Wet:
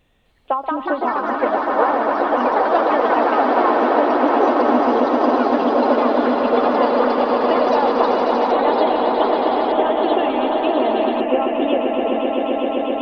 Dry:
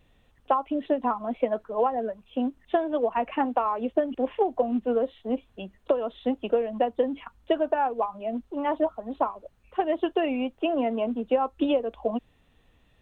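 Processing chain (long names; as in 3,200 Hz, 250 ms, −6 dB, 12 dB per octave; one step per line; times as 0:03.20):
low-shelf EQ 190 Hz −5 dB
echo that builds up and dies away 130 ms, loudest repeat 8, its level −7 dB
delay with pitch and tempo change per echo 258 ms, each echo +3 semitones, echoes 3
level +3 dB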